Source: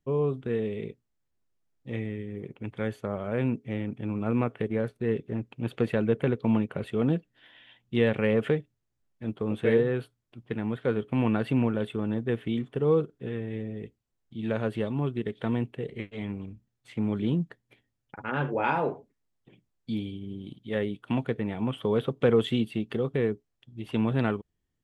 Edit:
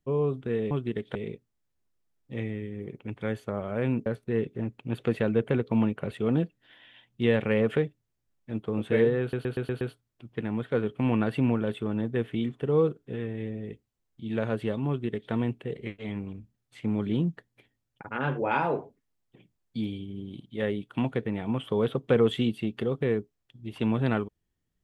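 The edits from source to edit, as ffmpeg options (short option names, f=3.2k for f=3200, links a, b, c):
-filter_complex "[0:a]asplit=9[a][b][c][d][e][f][g][h][i];[a]atrim=end=0.712[j];[b]atrim=start=15.008:end=15.452[k];[c]atrim=start=0.708:end=3.622[l];[d]atrim=start=4.788:end=10.062[m];[e]atrim=start=9.938:end=10.062[n];[f]atrim=start=9.938:end=10.062[o];[g]atrim=start=9.938:end=10.062[p];[h]atrim=start=9.938:end=10.062[q];[i]atrim=start=9.938[r];[j][k]acrossfade=d=0.004:c1=hsin:c2=hsin[s];[s][l]acrossfade=d=0.004:c1=hsin:c2=hsin[t];[t][m]acrossfade=d=0.004:c1=hsin:c2=hsin[u];[u][n]acrossfade=d=0.004:c1=hsin:c2=hsin[v];[v][o]acrossfade=d=0.004:c1=hsin:c2=hsin[w];[w][p]acrossfade=d=0.004:c1=hsin:c2=hsin[x];[x][q]acrossfade=d=0.004:c1=hsin:c2=hsin[y];[y][r]acrossfade=d=0.004:c1=hsin:c2=hsin"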